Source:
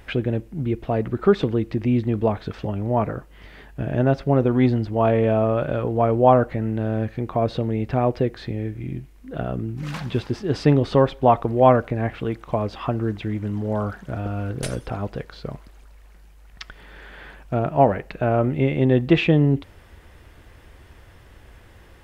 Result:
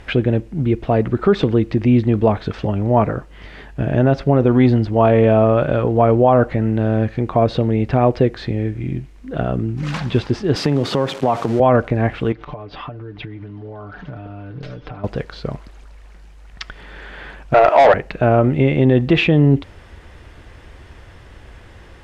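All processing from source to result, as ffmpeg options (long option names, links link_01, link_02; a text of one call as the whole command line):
ffmpeg -i in.wav -filter_complex "[0:a]asettb=1/sr,asplit=3[link_01][link_02][link_03];[link_01]atrim=end=10.564[link_04];[link_02]atrim=start=10.56:end=11.6,asetpts=PTS-STARTPTS,afade=type=in:duration=0.004:curve=qsin,afade=type=out:start_time=1.036:duration=0.004:curve=qsin,aeval=exprs='val(0)+0.5*0.0251*sgn(val(0))':channel_layout=same,highpass=frequency=120:width=0.5412,highpass=frequency=120:width=1.3066,acompressor=threshold=-18dB:ratio=6:attack=3.2:release=140:knee=1:detection=peak[link_05];[link_03]atrim=start=11.596[link_06];[link_04][link_05]acrossfade=duration=0.004:curve1=hsin:curve2=qsin[link_07];[link_07][link_06]acrossfade=duration=0.004:curve1=qsin:curve2=hsin,asettb=1/sr,asplit=3[link_08][link_09][link_10];[link_08]atrim=end=12.324[link_11];[link_09]atrim=start=12.32:end=15.04,asetpts=PTS-STARTPTS,afade=type=in:duration=0.004:curve=qsin,afade=type=out:start_time=2.716:duration=0.004:curve=qsin,lowpass=frequency=4500:width=0.5412,lowpass=frequency=4500:width=1.3066,acompressor=threshold=-36dB:ratio=10:attack=3.2:release=140:knee=1:detection=peak,aecho=1:1:6.8:0.71,atrim=end_sample=119952[link_12];[link_10]atrim=start=15.036[link_13];[link_11][link_12]acrossfade=duration=0.004:curve1=hsin:curve2=qsin[link_14];[link_14][link_13]acrossfade=duration=0.004:curve1=qsin:curve2=hsin,asettb=1/sr,asplit=3[link_15][link_16][link_17];[link_15]atrim=end=17.544[link_18];[link_16]atrim=start=17.54:end=17.94,asetpts=PTS-STARTPTS,afade=type=in:duration=0.004:curve=qsin,afade=type=out:start_time=0.396:duration=0.004:curve=qsin,highpass=frequency=430:width=0.5412,highpass=frequency=430:width=1.3066,asplit=2[link_19][link_20];[link_20]highpass=frequency=720:poles=1,volume=24dB,asoftclip=type=tanh:threshold=-4dB[link_21];[link_19][link_21]amix=inputs=2:normalize=0,lowpass=frequency=2200:poles=1,volume=-6dB[link_22];[link_17]atrim=start=17.936[link_23];[link_18][link_22]acrossfade=duration=0.004:curve1=hsin:curve2=qsin[link_24];[link_24][link_23]acrossfade=duration=0.004:curve1=qsin:curve2=hsin,lowpass=7700,alimiter=level_in=9.5dB:limit=-1dB:release=50:level=0:latency=1,volume=-3dB" out.wav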